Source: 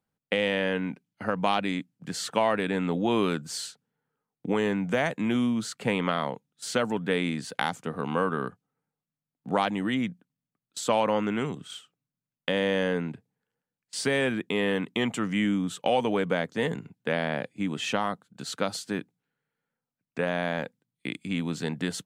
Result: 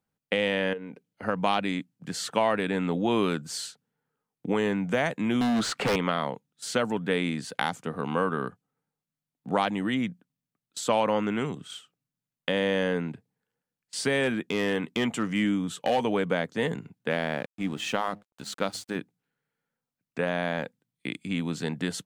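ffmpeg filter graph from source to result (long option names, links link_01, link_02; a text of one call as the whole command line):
ffmpeg -i in.wav -filter_complex "[0:a]asettb=1/sr,asplit=3[link_01][link_02][link_03];[link_01]atrim=end=0.734[link_04];[link_02]atrim=start=0.73:end=1.23,asetpts=PTS-STARTPTS,afade=type=in:duration=0.004:curve=qsin,afade=type=out:start_time=0.496:duration=0.004:curve=qsin,equalizer=frequency=470:width_type=o:width=0.65:gain=13,acompressor=threshold=-39dB:ratio=3:attack=3.2:release=140:knee=1:detection=peak[link_05];[link_03]atrim=start=1.226[link_06];[link_04][link_05]acrossfade=duration=0.004:curve1=hsin:curve2=qsin[link_07];[link_07][link_06]acrossfade=duration=0.004:curve1=qsin:curve2=hsin,asettb=1/sr,asplit=3[link_08][link_09][link_10];[link_08]atrim=end=5.414[link_11];[link_09]atrim=start=5.41:end=5.96,asetpts=PTS-STARTPTS,afade=type=in:duration=0.004:curve=qsin,afade=type=out:start_time=0.546:duration=0.004:curve=qsin,acompressor=mode=upward:threshold=-38dB:ratio=2.5:attack=3.2:release=140:knee=2.83:detection=peak,asplit=2[link_12][link_13];[link_13]highpass=frequency=720:poles=1,volume=24dB,asoftclip=type=tanh:threshold=-12dB[link_14];[link_12][link_14]amix=inputs=2:normalize=0,lowpass=frequency=1800:poles=1,volume=-6dB,aeval=exprs='0.1*(abs(mod(val(0)/0.1+3,4)-2)-1)':channel_layout=same[link_15];[link_10]atrim=start=5.956[link_16];[link_11][link_15]acrossfade=duration=0.004:curve1=hsin:curve2=qsin[link_17];[link_17][link_16]acrossfade=duration=0.004:curve1=qsin:curve2=hsin,asettb=1/sr,asplit=3[link_18][link_19][link_20];[link_18]atrim=end=14.234[link_21];[link_19]atrim=start=14.23:end=16.05,asetpts=PTS-STARTPTS,afade=type=in:duration=0.004:curve=qsin,afade=type=out:start_time=1.816:duration=0.004:curve=qsin,asplit=2[link_22][link_23];[link_23]adelay=13,volume=-14dB[link_24];[link_22][link_24]amix=inputs=2:normalize=0,atrim=end_sample=80262,asoftclip=type=hard:threshold=-18dB[link_25];[link_20]atrim=start=16.046[link_26];[link_21][link_25]acrossfade=duration=0.004:curve1=hsin:curve2=qsin[link_27];[link_27][link_26]acrossfade=duration=0.004:curve1=qsin:curve2=hsin,asettb=1/sr,asplit=3[link_28][link_29][link_30];[link_28]atrim=end=17.114[link_31];[link_29]atrim=start=17.11:end=18.96,asetpts=PTS-STARTPTS,afade=type=in:duration=0.004:curve=qsin,afade=type=out:start_time=1.846:duration=0.004:curve=qsin,bandreject=frequency=102.9:width_type=h:width=4,bandreject=frequency=205.8:width_type=h:width=4,bandreject=frequency=308.7:width_type=h:width=4,aeval=exprs='sgn(val(0))*max(abs(val(0))-0.00447,0)':channel_layout=same[link_32];[link_30]atrim=start=18.956[link_33];[link_31][link_32]acrossfade=duration=0.004:curve1=hsin:curve2=qsin[link_34];[link_34][link_33]acrossfade=duration=0.004:curve1=qsin:curve2=hsin" out.wav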